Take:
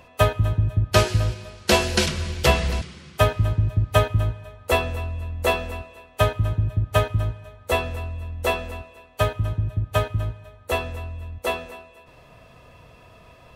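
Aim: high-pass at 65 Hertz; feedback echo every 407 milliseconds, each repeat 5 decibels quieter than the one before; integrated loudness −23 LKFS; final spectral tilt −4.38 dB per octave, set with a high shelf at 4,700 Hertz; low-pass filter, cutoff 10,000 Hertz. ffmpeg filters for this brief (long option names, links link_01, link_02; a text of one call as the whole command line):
ffmpeg -i in.wav -af "highpass=65,lowpass=10000,highshelf=frequency=4700:gain=4.5,aecho=1:1:407|814|1221|1628|2035|2442|2849:0.562|0.315|0.176|0.0988|0.0553|0.031|0.0173" out.wav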